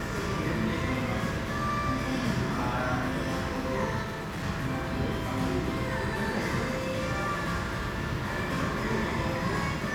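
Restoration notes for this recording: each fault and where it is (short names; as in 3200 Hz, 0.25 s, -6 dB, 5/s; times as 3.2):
4.02–4.44 clipped -31.5 dBFS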